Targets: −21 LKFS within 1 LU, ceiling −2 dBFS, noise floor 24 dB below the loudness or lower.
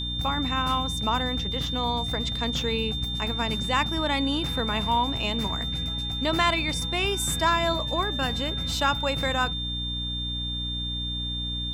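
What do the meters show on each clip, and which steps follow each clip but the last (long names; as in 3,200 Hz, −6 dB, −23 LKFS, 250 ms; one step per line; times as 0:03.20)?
mains hum 60 Hz; hum harmonics up to 300 Hz; level of the hum −31 dBFS; interfering tone 3,600 Hz; level of the tone −30 dBFS; integrated loudness −26.0 LKFS; sample peak −10.0 dBFS; target loudness −21.0 LKFS
→ mains-hum notches 60/120/180/240/300 Hz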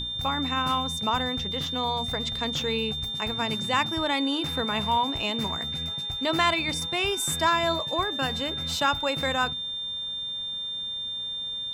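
mains hum none found; interfering tone 3,600 Hz; level of the tone −30 dBFS
→ notch filter 3,600 Hz, Q 30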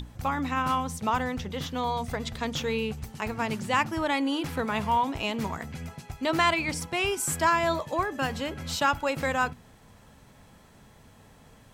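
interfering tone none found; integrated loudness −28.0 LKFS; sample peak −11.5 dBFS; target loudness −21.0 LKFS
→ level +7 dB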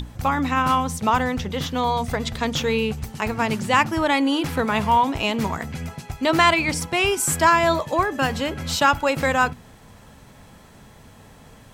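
integrated loudness −21.0 LKFS; sample peak −4.5 dBFS; background noise floor −48 dBFS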